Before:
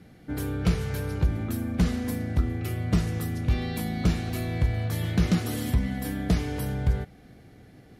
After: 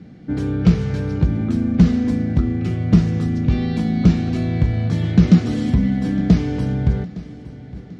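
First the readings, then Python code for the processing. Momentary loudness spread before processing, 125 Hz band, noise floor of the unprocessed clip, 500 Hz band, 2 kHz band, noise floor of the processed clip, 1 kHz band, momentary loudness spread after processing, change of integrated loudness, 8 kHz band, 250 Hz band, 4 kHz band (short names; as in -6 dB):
4 LU, +9.0 dB, -52 dBFS, +6.5 dB, +2.5 dB, -39 dBFS, +3.5 dB, 9 LU, +9.5 dB, n/a, +12.0 dB, +2.0 dB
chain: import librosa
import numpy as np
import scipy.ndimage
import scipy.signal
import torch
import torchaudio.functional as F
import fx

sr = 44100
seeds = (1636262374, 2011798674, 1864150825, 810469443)

y = scipy.signal.sosfilt(scipy.signal.butter(4, 6600.0, 'lowpass', fs=sr, output='sos'), x)
y = fx.peak_eq(y, sr, hz=200.0, db=11.0, octaves=1.8)
y = fx.echo_feedback(y, sr, ms=862, feedback_pct=52, wet_db=-18)
y = y * 10.0 ** (2.0 / 20.0)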